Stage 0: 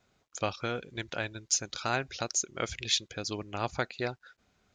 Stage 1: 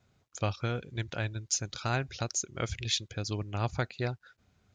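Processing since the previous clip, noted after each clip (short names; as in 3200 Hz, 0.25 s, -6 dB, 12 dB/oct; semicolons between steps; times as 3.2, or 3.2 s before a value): bell 100 Hz +12 dB 1.6 oct; gain -2.5 dB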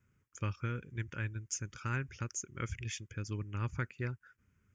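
fixed phaser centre 1700 Hz, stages 4; gain -3 dB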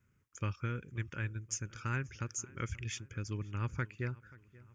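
darkening echo 0.532 s, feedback 50%, low-pass 3700 Hz, level -21.5 dB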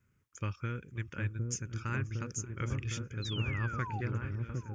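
painted sound fall, 3.22–4.01, 730–4200 Hz -42 dBFS; repeats that get brighter 0.759 s, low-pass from 400 Hz, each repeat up 1 oct, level 0 dB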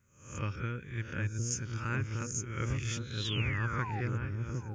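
spectral swells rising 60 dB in 0.52 s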